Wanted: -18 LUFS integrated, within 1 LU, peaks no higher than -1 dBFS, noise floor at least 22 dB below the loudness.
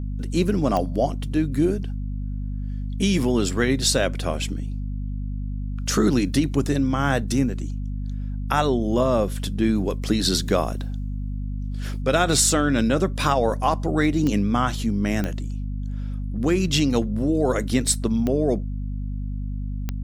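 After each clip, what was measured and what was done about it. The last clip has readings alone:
clicks found 5; hum 50 Hz; highest harmonic 250 Hz; hum level -25 dBFS; loudness -23.5 LUFS; peak level -6.0 dBFS; loudness target -18.0 LUFS
-> de-click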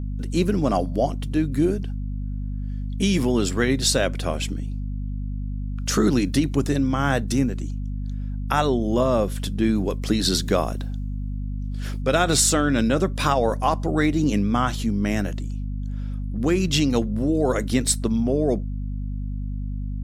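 clicks found 0; hum 50 Hz; highest harmonic 250 Hz; hum level -25 dBFS
-> hum notches 50/100/150/200/250 Hz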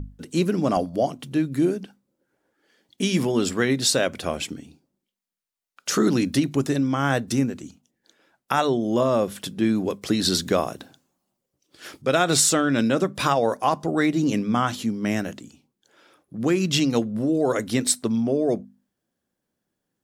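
hum not found; loudness -23.0 LUFS; peak level -5.0 dBFS; loudness target -18.0 LUFS
-> trim +5 dB; peak limiter -1 dBFS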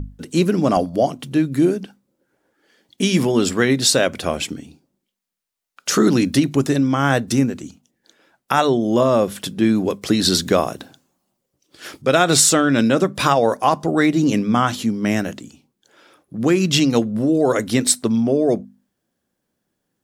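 loudness -18.0 LUFS; peak level -1.0 dBFS; noise floor -77 dBFS

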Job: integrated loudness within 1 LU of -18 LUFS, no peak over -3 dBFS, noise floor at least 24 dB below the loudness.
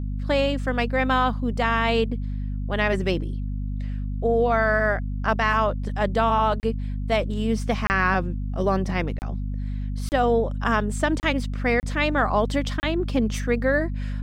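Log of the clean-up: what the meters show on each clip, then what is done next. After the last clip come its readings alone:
dropouts 7; longest dropout 29 ms; hum 50 Hz; highest harmonic 250 Hz; hum level -25 dBFS; loudness -24.0 LUFS; peak level -7.5 dBFS; loudness target -18.0 LUFS
-> interpolate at 6.60/7.87/9.19/10.09/11.20/11.80/12.80 s, 29 ms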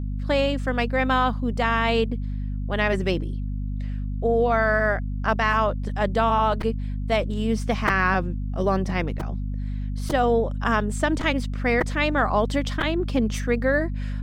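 dropouts 0; hum 50 Hz; highest harmonic 250 Hz; hum level -25 dBFS
-> hum notches 50/100/150/200/250 Hz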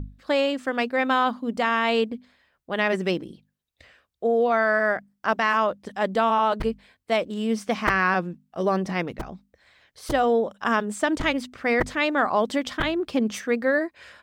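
hum not found; loudness -24.0 LUFS; peak level -8.0 dBFS; loudness target -18.0 LUFS
-> trim +6 dB; peak limiter -3 dBFS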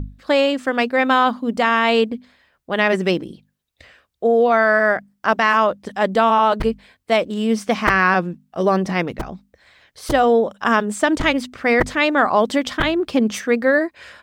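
loudness -18.0 LUFS; peak level -3.0 dBFS; noise floor -70 dBFS

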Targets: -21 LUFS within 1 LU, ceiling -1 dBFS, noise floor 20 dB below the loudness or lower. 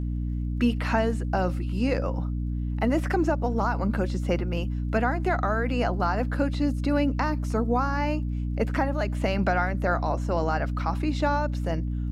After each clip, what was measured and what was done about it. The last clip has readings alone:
tick rate 24 per s; hum 60 Hz; highest harmonic 300 Hz; hum level -26 dBFS; loudness -26.5 LUFS; peak level -11.0 dBFS; loudness target -21.0 LUFS
-> de-click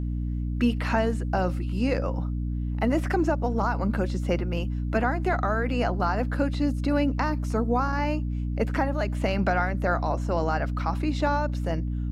tick rate 0 per s; hum 60 Hz; highest harmonic 300 Hz; hum level -26 dBFS
-> de-hum 60 Hz, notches 5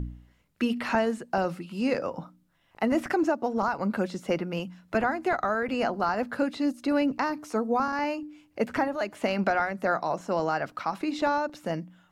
hum not found; loudness -28.5 LUFS; peak level -12.5 dBFS; loudness target -21.0 LUFS
-> trim +7.5 dB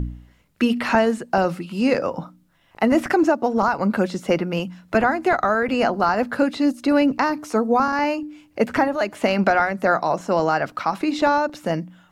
loudness -21.0 LUFS; peak level -5.0 dBFS; noise floor -58 dBFS

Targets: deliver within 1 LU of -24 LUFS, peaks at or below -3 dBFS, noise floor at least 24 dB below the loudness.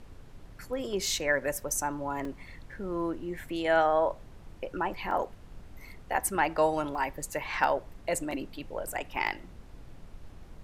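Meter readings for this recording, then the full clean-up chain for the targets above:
dropouts 6; longest dropout 2.0 ms; noise floor -50 dBFS; noise floor target -55 dBFS; loudness -31.0 LUFS; peak level -11.0 dBFS; loudness target -24.0 LUFS
-> interpolate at 2.25/5.11/6.95/7.64/8.31/9.27 s, 2 ms; noise print and reduce 6 dB; trim +7 dB

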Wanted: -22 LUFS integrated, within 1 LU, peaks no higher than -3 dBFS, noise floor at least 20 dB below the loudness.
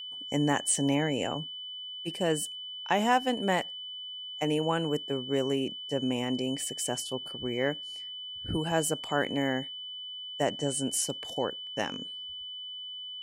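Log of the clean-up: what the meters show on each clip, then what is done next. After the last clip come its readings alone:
steady tone 3 kHz; tone level -38 dBFS; loudness -31.0 LUFS; peak level -12.0 dBFS; loudness target -22.0 LUFS
-> band-stop 3 kHz, Q 30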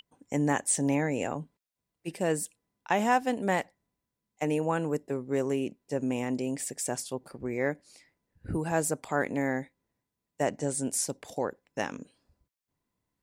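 steady tone not found; loudness -30.5 LUFS; peak level -12.5 dBFS; loudness target -22.0 LUFS
-> trim +8.5 dB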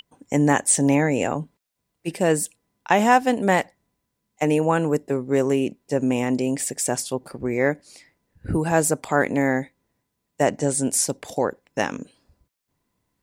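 loudness -22.0 LUFS; peak level -4.0 dBFS; noise floor -78 dBFS

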